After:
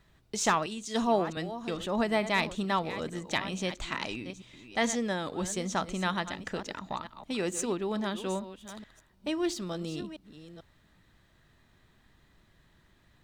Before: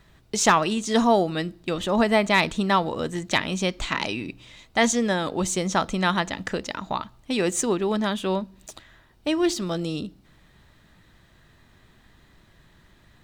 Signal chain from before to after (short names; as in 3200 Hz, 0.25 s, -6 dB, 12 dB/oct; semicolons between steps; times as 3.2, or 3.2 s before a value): reverse delay 0.442 s, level -12.5 dB; 0.66–1.37 three-band expander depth 70%; gain -8 dB